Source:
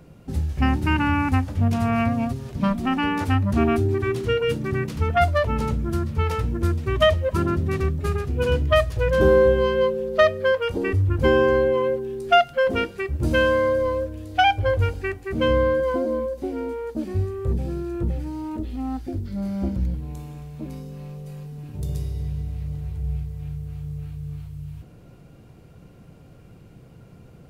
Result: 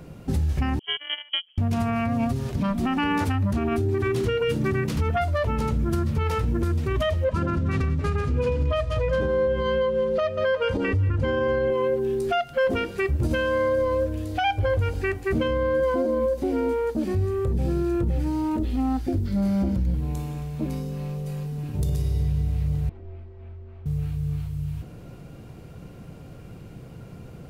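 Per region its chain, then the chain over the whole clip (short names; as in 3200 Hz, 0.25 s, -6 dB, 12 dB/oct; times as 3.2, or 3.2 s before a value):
0.79–1.58 gate -18 dBFS, range -33 dB + air absorption 97 m + inverted band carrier 3200 Hz
7.24–11.7 Bessel low-pass 6100 Hz + notch comb 370 Hz + feedback echo 0.184 s, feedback 33%, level -15 dB
22.89–23.86 HPF 280 Hz + frequency shift -61 Hz + tape spacing loss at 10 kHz 44 dB
whole clip: compressor, threshold -23 dBFS; limiter -21.5 dBFS; gain +5.5 dB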